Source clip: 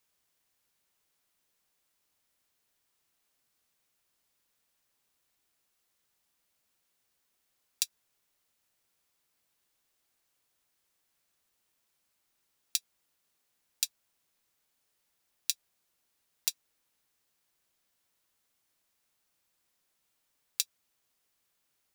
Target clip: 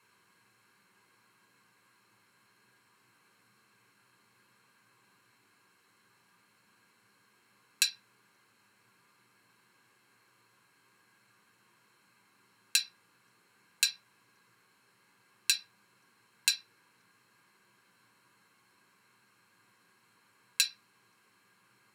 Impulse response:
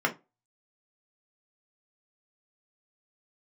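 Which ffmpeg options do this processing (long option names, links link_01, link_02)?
-filter_complex "[0:a]lowpass=11000,equalizer=frequency=640:width_type=o:width=0.67:gain=-11,asplit=2[link_01][link_02];[link_02]alimiter=limit=-12.5dB:level=0:latency=1,volume=0dB[link_03];[link_01][link_03]amix=inputs=2:normalize=0[link_04];[1:a]atrim=start_sample=2205,asetrate=33957,aresample=44100[link_05];[link_04][link_05]afir=irnorm=-1:irlink=0"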